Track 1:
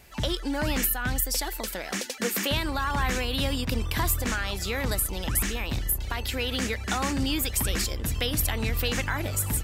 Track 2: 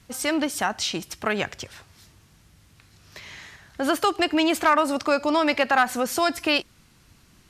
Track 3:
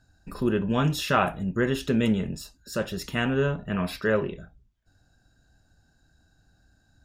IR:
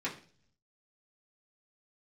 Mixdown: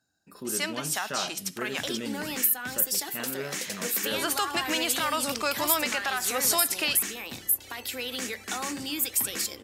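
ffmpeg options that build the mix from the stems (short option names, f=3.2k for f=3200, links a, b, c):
-filter_complex "[0:a]adelay=1600,volume=-7dB,asplit=2[a][b];[b]volume=-12.5dB[c];[1:a]agate=range=-33dB:threshold=-43dB:ratio=3:detection=peak,tiltshelf=f=750:g=-6.5,adelay=350,volume=-5.5dB[d];[2:a]volume=-10.5dB,asplit=2[e][f];[f]apad=whole_len=345827[g];[d][g]sidechaincompress=threshold=-39dB:ratio=4:attack=16:release=115[h];[h][e]amix=inputs=2:normalize=0,alimiter=limit=-19dB:level=0:latency=1:release=120,volume=0dB[i];[3:a]atrim=start_sample=2205[j];[c][j]afir=irnorm=-1:irlink=0[k];[a][i][k]amix=inputs=3:normalize=0,highpass=200,highshelf=f=5.5k:g=10"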